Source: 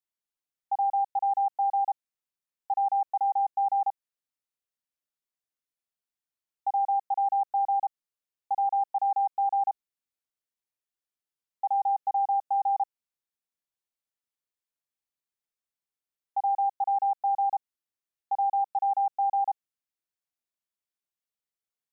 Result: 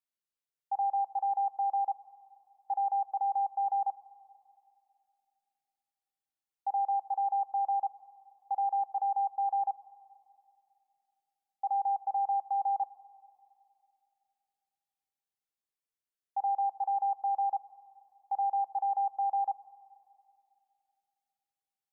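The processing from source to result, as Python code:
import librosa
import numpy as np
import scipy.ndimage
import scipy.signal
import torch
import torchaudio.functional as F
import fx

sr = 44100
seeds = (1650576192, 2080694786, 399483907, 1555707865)

y = fx.rev_fdn(x, sr, rt60_s=2.6, lf_ratio=1.3, hf_ratio=0.4, size_ms=38.0, drr_db=15.0)
y = F.gain(torch.from_numpy(y), -4.5).numpy()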